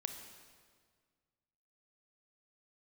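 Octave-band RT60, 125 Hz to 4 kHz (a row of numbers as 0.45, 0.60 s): 2.2, 2.0, 1.8, 1.7, 1.6, 1.5 s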